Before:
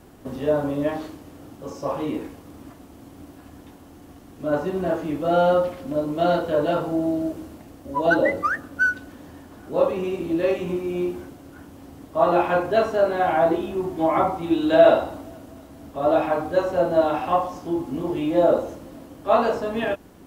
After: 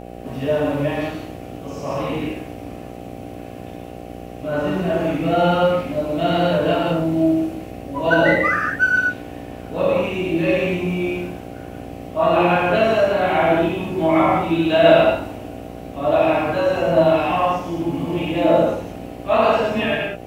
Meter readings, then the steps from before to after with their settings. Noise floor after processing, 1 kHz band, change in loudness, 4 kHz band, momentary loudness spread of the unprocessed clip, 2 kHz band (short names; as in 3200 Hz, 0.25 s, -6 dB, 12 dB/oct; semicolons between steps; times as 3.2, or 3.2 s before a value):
-35 dBFS, +3.5 dB, +3.5 dB, +9.0 dB, 15 LU, +6.5 dB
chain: fifteen-band EQ 160 Hz +8 dB, 400 Hz -3 dB, 2500 Hz +11 dB; non-linear reverb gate 0.23 s flat, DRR -4.5 dB; buzz 60 Hz, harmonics 13, -33 dBFS 0 dB/oct; gain -2.5 dB